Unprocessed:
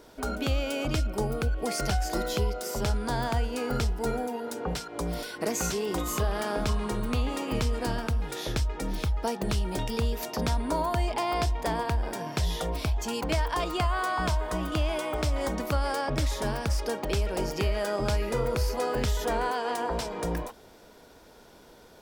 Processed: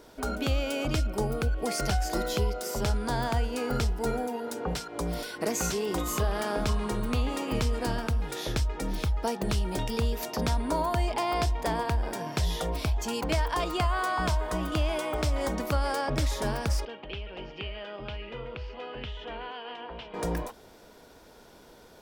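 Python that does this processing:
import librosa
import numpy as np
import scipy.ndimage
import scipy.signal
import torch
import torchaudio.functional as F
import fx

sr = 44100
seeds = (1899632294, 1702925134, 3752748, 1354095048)

y = fx.ladder_lowpass(x, sr, hz=3200.0, resonance_pct=70, at=(16.85, 20.14))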